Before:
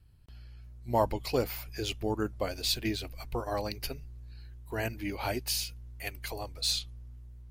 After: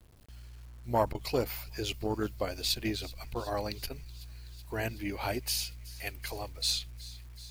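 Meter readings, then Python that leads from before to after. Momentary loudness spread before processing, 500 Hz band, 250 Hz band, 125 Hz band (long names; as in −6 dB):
19 LU, −1.0 dB, −1.0 dB, −1.0 dB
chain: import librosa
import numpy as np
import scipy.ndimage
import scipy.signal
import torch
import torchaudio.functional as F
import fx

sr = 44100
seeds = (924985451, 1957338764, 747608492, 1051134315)

y = fx.echo_wet_highpass(x, sr, ms=376, feedback_pct=77, hz=2500.0, wet_db=-18.5)
y = fx.quant_dither(y, sr, seeds[0], bits=10, dither='none')
y = fx.transformer_sat(y, sr, knee_hz=400.0)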